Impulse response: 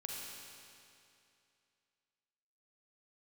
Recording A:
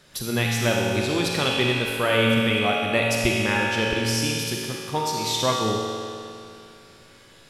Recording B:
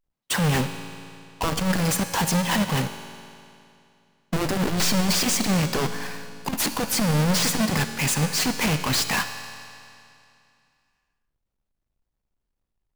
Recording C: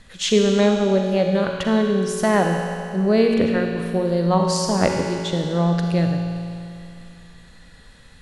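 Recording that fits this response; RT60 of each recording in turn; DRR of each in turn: A; 2.6 s, 2.6 s, 2.6 s; -2.5 dB, 8.5 dB, 1.5 dB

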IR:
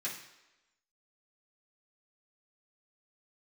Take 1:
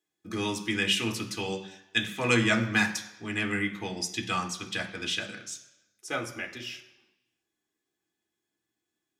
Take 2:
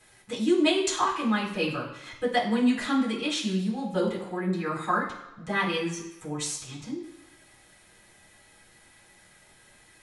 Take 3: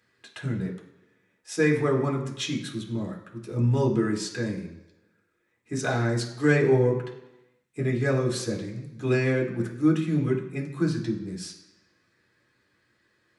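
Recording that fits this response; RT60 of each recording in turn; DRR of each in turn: 2; 1.0 s, 1.0 s, 1.0 s; 2.5 dB, -8.0 dB, -1.5 dB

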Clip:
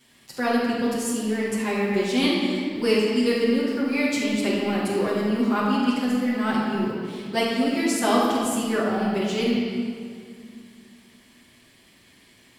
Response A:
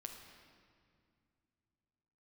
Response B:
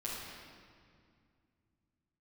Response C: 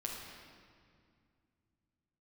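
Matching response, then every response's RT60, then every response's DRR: B; 2.3 s, 2.2 s, 2.2 s; 2.0 dB, -9.0 dB, -3.0 dB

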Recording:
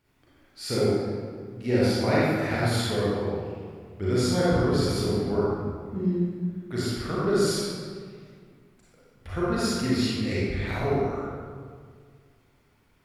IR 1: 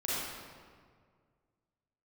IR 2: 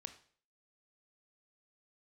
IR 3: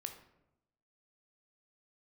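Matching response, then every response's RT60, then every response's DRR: 1; 1.9 s, 0.50 s, 0.90 s; -9.0 dB, 8.5 dB, 5.5 dB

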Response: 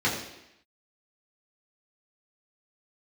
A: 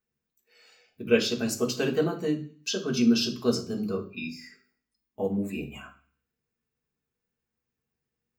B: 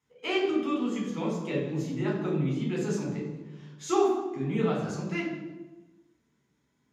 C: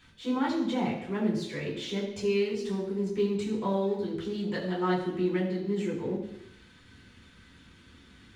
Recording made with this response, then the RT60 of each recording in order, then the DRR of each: C; 0.45 s, 1.2 s, 0.85 s; -1.0 dB, -4.5 dB, -7.5 dB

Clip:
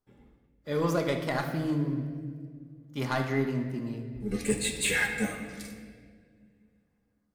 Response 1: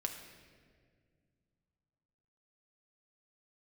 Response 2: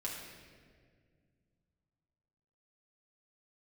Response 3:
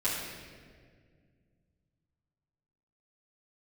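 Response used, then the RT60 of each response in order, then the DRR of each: 1; 1.9 s, 1.9 s, 1.9 s; 3.0 dB, -5.0 dB, -11.5 dB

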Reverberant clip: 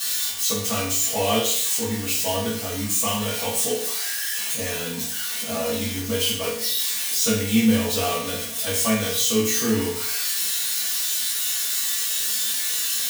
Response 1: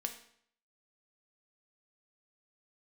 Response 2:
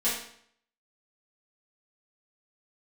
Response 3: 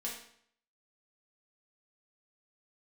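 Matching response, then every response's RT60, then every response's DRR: 2; 0.65 s, 0.65 s, 0.65 s; 5.0 dB, -11.0 dB, -4.5 dB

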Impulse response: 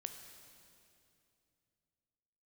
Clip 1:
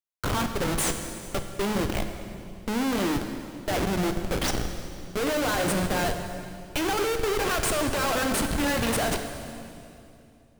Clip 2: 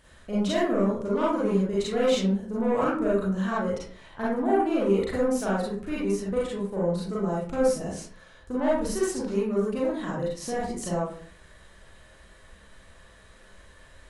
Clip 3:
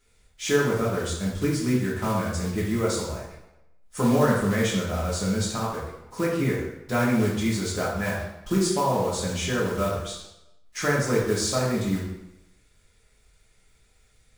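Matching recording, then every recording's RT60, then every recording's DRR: 1; 2.7 s, 0.50 s, 0.90 s; 6.0 dB, -7.0 dB, -6.0 dB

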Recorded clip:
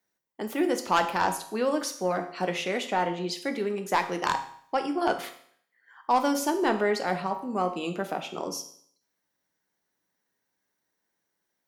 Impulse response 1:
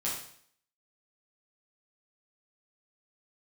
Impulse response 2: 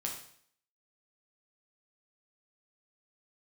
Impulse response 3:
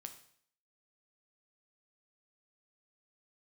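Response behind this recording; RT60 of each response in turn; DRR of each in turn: 3; 0.60 s, 0.60 s, 0.60 s; -7.0 dB, -1.0 dB, 6.0 dB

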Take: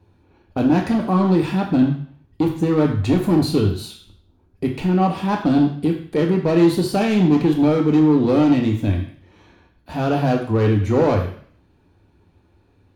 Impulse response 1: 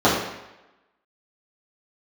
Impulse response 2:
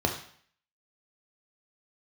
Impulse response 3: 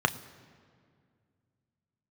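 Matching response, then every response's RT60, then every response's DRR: 2; 0.95 s, 0.55 s, 2.1 s; -10.0 dB, 2.5 dB, 9.5 dB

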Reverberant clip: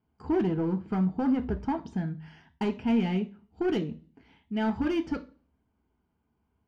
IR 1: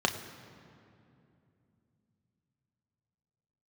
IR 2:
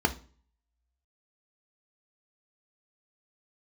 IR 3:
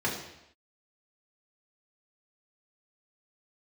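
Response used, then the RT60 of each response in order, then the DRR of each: 2; 2.7 s, 0.40 s, no single decay rate; 4.0 dB, 6.0 dB, -4.5 dB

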